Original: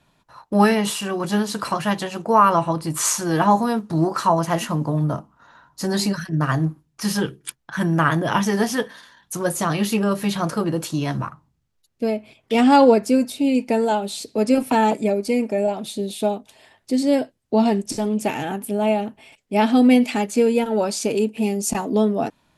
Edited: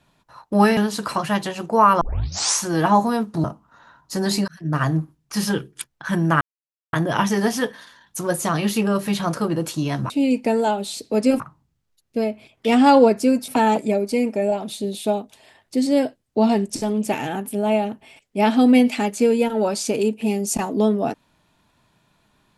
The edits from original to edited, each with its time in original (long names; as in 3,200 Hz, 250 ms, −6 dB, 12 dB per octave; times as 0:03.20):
0:00.77–0:01.33: remove
0:02.57: tape start 0.58 s
0:04.00–0:05.12: remove
0:06.16–0:06.45: fade in
0:08.09: splice in silence 0.52 s
0:13.34–0:14.64: move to 0:11.26